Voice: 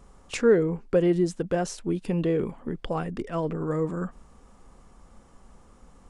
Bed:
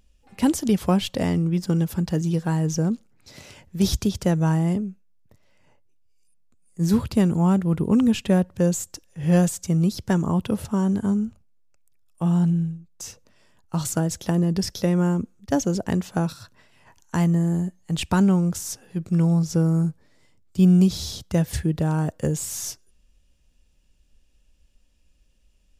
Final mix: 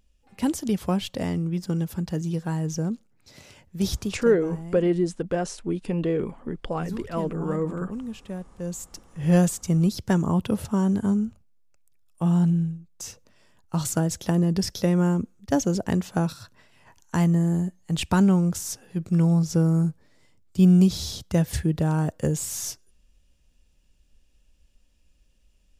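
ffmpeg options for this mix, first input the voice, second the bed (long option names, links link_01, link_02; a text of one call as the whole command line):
ffmpeg -i stem1.wav -i stem2.wav -filter_complex "[0:a]adelay=3800,volume=0dB[link_01];[1:a]volume=10.5dB,afade=type=out:start_time=3.95:duration=0.36:silence=0.281838,afade=type=in:start_time=8.58:duration=0.62:silence=0.177828[link_02];[link_01][link_02]amix=inputs=2:normalize=0" out.wav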